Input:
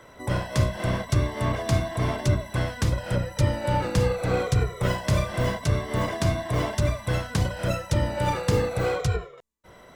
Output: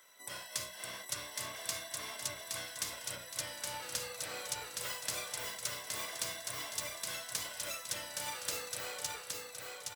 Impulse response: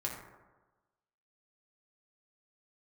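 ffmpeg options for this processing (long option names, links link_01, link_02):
-af "aderivative,aecho=1:1:818|1636|2454|3272|4090:0.668|0.274|0.112|0.0461|0.0189"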